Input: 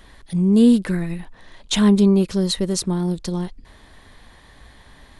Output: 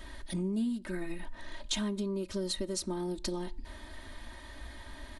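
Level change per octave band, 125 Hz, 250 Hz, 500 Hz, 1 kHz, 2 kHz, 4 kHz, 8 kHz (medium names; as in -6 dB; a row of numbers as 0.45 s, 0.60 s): -18.0 dB, -18.0 dB, -14.0 dB, -11.0 dB, -9.0 dB, -11.0 dB, -10.0 dB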